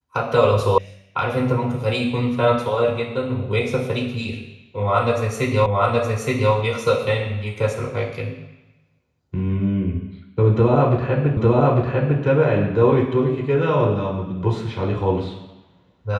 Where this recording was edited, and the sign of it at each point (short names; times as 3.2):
0.78 sound cut off
5.66 repeat of the last 0.87 s
11.37 repeat of the last 0.85 s